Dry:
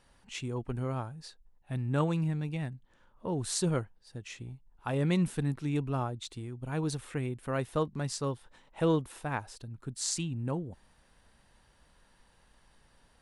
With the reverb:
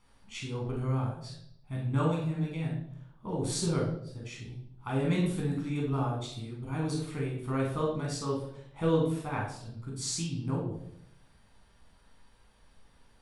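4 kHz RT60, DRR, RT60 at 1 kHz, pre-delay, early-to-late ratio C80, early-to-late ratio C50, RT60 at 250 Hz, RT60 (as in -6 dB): 0.60 s, -3.5 dB, 0.60 s, 10 ms, 7.5 dB, 3.5 dB, 0.90 s, 0.70 s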